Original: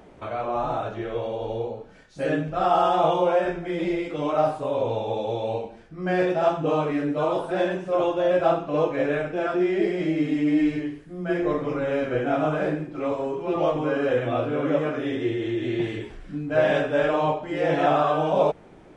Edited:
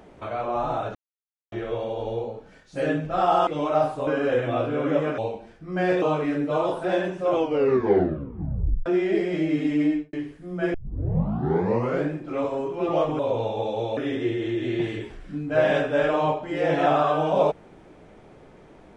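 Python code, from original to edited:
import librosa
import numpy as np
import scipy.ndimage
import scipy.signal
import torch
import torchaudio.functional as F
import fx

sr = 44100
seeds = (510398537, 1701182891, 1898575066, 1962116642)

y = fx.studio_fade_out(x, sr, start_s=10.49, length_s=0.31)
y = fx.edit(y, sr, fx.insert_silence(at_s=0.95, length_s=0.57),
    fx.cut(start_s=2.9, length_s=1.2),
    fx.swap(start_s=4.7, length_s=0.78, other_s=13.86, other_length_s=1.11),
    fx.cut(start_s=6.32, length_s=0.37),
    fx.tape_stop(start_s=7.98, length_s=1.55),
    fx.tape_start(start_s=11.41, length_s=1.36), tone=tone)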